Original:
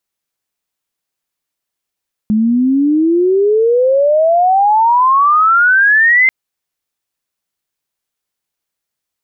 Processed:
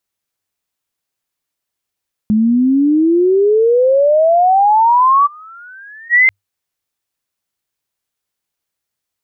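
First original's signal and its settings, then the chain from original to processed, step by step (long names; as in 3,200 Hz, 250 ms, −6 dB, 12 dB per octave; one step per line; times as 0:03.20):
glide logarithmic 210 Hz → 2,100 Hz −9 dBFS → −6 dBFS 3.99 s
gain on a spectral selection 0:05.26–0:06.16, 830–1,900 Hz −26 dB
parametric band 99 Hz +8 dB 0.23 octaves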